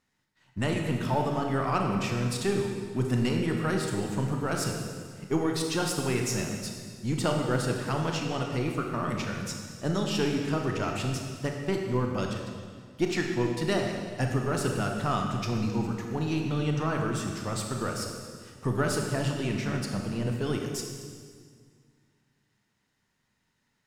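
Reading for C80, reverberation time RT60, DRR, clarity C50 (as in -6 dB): 4.5 dB, 1.9 s, 1.5 dB, 3.0 dB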